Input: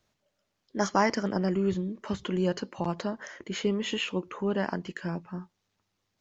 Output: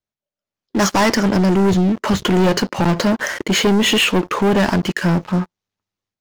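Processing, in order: AGC gain up to 11 dB; sample leveller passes 5; gain -8 dB

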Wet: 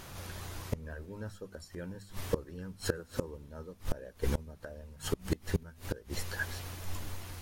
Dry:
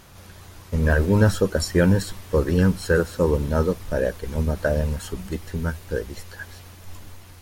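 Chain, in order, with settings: notches 50/100/150/200/250 Hz; flipped gate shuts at -19 dBFS, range -26 dB; gain +1.5 dB

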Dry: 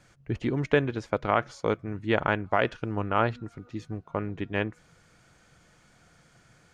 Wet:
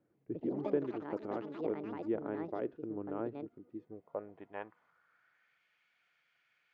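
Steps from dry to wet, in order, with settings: Bessel low-pass 3800 Hz, order 2; echoes that change speed 0.14 s, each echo +6 st, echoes 3; band-pass sweep 340 Hz -> 2500 Hz, 3.66–5.66; gain -5 dB

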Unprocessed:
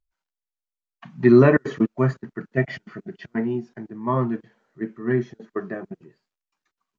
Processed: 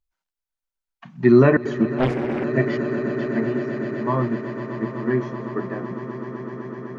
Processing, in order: on a send: swelling echo 0.126 s, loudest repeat 8, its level -15 dB; 1.98–2.44 on the sum: Doppler distortion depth 0.94 ms

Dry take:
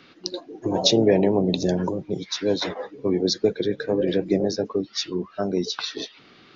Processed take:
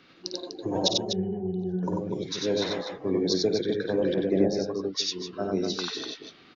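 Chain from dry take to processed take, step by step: 0.88–1.83 octave resonator F#, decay 0.16 s; loudspeakers at several distances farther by 18 m -9 dB, 32 m -2 dB, 85 m -7 dB; 4.14–5.33 three-band expander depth 100%; gain -5.5 dB

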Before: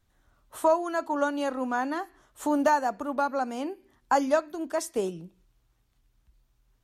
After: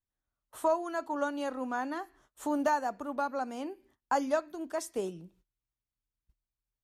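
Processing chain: gate -58 dBFS, range -19 dB; gain -5.5 dB

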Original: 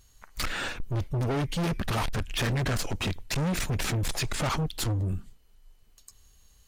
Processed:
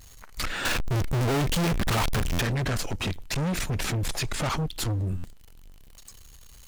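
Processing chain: zero-crossing step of -45.5 dBFS; 0.65–2.41 sample leveller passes 5; stuck buffer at 2.32/5.17, samples 512, times 5

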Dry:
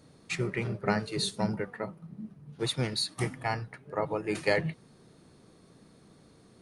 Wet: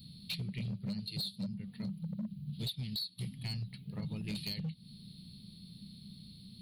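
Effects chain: EQ curve 140 Hz 0 dB, 200 Hz +5 dB, 310 Hz -19 dB, 500 Hz -26 dB, 1600 Hz -28 dB, 3000 Hz +1 dB, 4300 Hz +10 dB, 6400 Hz -29 dB, 12000 Hz +9 dB; compressor 12:1, threshold -40 dBFS, peak gain reduction 21.5 dB; hard clip -39 dBFS, distortion -15 dB; gain +6 dB

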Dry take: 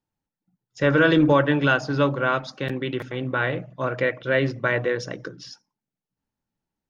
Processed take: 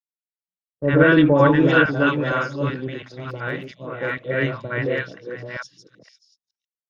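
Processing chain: reverse delay 0.464 s, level -2 dB; high shelf 5700 Hz -7.5 dB; three bands offset in time lows, mids, highs 60/620 ms, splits 810/4100 Hz; three-band expander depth 100%

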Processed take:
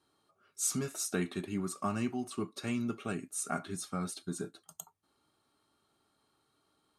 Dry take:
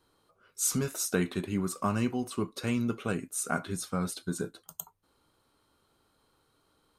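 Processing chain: Chebyshev low-pass 10000 Hz, order 2; low shelf 76 Hz -11.5 dB; notch comb 500 Hz; gain -2 dB

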